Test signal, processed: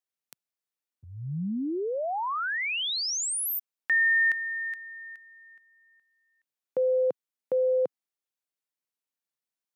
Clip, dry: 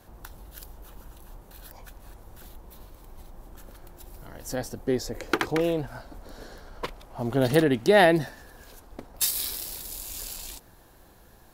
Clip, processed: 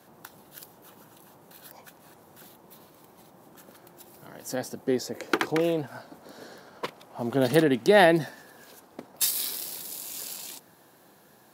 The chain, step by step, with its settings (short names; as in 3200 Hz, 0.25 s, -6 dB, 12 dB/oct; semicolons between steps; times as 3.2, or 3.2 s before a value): HPF 140 Hz 24 dB/oct